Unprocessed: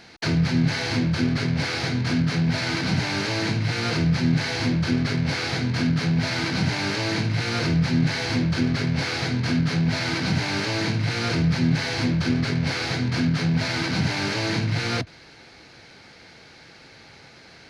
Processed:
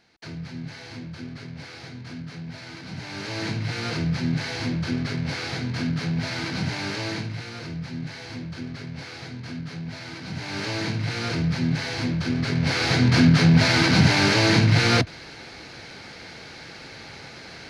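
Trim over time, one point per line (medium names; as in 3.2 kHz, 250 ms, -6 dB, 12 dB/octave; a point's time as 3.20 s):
2.86 s -14.5 dB
3.43 s -4 dB
7.08 s -4 dB
7.54 s -12 dB
10.25 s -12 dB
10.66 s -3 dB
12.31 s -3 dB
13.06 s +6.5 dB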